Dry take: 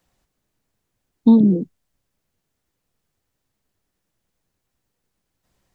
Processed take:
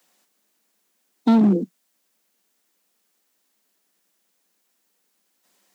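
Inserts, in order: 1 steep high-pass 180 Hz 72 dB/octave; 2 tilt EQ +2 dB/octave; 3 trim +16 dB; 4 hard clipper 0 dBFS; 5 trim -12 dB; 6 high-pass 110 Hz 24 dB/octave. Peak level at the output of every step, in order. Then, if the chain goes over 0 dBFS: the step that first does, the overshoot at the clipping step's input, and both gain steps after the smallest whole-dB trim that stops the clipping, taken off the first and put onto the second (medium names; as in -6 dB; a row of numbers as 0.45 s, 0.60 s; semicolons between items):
-4.5 dBFS, -8.5 dBFS, +7.5 dBFS, 0.0 dBFS, -12.0 dBFS, -6.5 dBFS; step 3, 7.5 dB; step 3 +8 dB, step 5 -4 dB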